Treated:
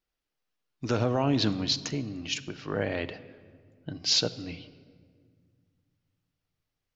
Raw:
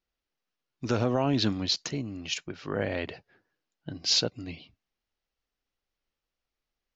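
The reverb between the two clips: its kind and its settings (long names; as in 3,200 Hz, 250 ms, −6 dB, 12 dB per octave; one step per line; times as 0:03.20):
rectangular room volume 3,000 cubic metres, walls mixed, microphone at 0.48 metres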